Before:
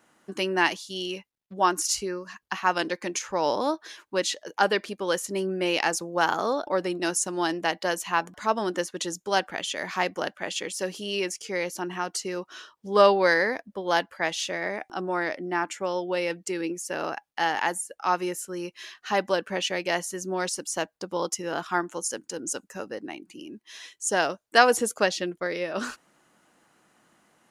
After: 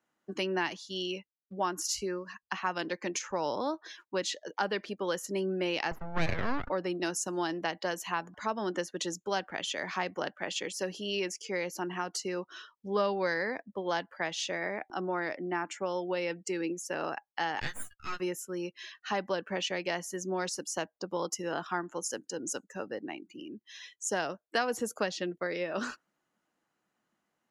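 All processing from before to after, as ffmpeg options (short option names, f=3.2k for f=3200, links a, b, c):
-filter_complex "[0:a]asettb=1/sr,asplit=3[a][b][c];[a]atrim=end=5.914[d];[b]atrim=start=5.91:end=6.7,asetpts=PTS-STARTPTS,afade=t=in:d=0.004:c=qsin,afade=t=out:st=0.786:d=0.004:c=qsin,lowpass=3.1k,lowshelf=f=150:g=7,aeval=exprs='abs(val(0))':c=same[e];[c]atrim=start=6.696[f];[d][e]acrossfade=d=0.004:c1=hsin:c2=qsin[g];[g][f]acrossfade=d=0.004:c1=qsin:c2=hsin,asettb=1/sr,asplit=3[h][i][j];[h]atrim=end=17.604[k];[i]atrim=start=17.6:end=18.2,asetpts=PTS-STARTPTS,afade=t=in:d=0.004:c=qsin,afade=t=out:st=0.596:d=0.004:c=qsin,highpass=f=1.4k:w=0.5412,highpass=f=1.4k:w=1.3066,aeval=exprs='max(val(0),0)':c=same,asplit=2[l][m];[m]adelay=14,volume=-2dB[n];[l][n]amix=inputs=2:normalize=0,atrim=end_sample=26460[o];[j]atrim=start=18.196[p];[k][o]acrossfade=d=0.004:c1=hsin:c2=qsin[q];[q][p]acrossfade=d=0.004:c1=qsin:c2=hsin,afftdn=nr=15:nf=-48,equalizer=f=9.1k:w=3.3:g=-9,acrossover=split=200[r][s];[s]acompressor=threshold=-27dB:ratio=3[t];[r][t]amix=inputs=2:normalize=0,volume=-2.5dB"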